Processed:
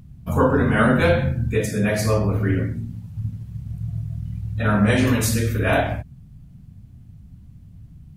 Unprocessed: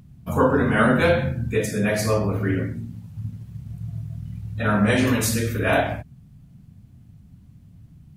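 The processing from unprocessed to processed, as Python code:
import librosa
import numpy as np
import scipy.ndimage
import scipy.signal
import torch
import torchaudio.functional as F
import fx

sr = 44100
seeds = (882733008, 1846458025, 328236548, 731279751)

y = fx.low_shelf(x, sr, hz=77.0, db=11.5)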